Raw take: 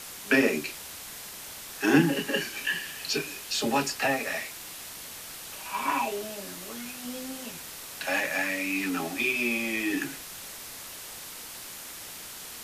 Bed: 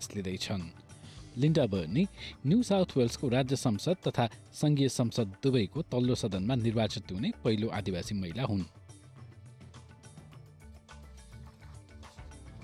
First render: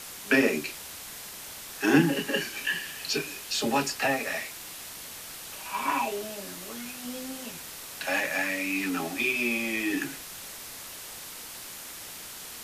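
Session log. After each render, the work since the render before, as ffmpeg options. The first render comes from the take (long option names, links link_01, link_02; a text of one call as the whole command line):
ffmpeg -i in.wav -af anull out.wav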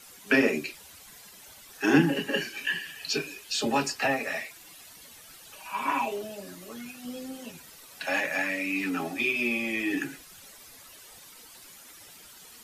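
ffmpeg -i in.wav -af "afftdn=noise_reduction=12:noise_floor=-42" out.wav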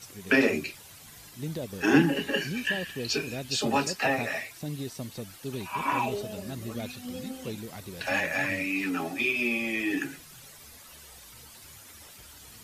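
ffmpeg -i in.wav -i bed.wav -filter_complex "[1:a]volume=-8.5dB[link_01];[0:a][link_01]amix=inputs=2:normalize=0" out.wav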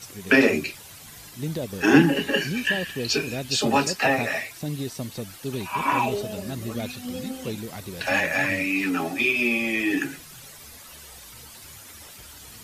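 ffmpeg -i in.wav -af "volume=5dB" out.wav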